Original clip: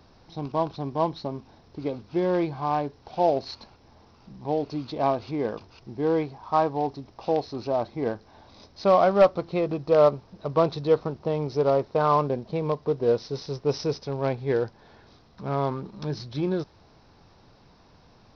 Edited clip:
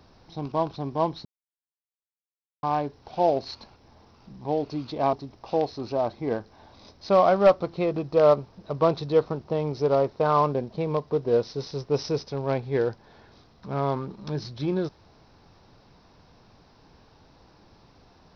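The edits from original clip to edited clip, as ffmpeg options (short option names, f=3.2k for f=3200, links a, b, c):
-filter_complex "[0:a]asplit=4[a][b][c][d];[a]atrim=end=1.25,asetpts=PTS-STARTPTS,afade=t=out:st=1.246:d=0.004:c=hsin[e];[b]atrim=start=1.25:end=2.63,asetpts=PTS-STARTPTS,volume=0[f];[c]atrim=start=2.63:end=5.132,asetpts=PTS-STARTPTS,afade=t=in:d=0.004:c=hsin[g];[d]atrim=start=6.878[h];[e][f][g]concat=n=3:v=0:a=1[i];[i][h]acrossfade=d=0.004:c1=hsin:c2=hsin"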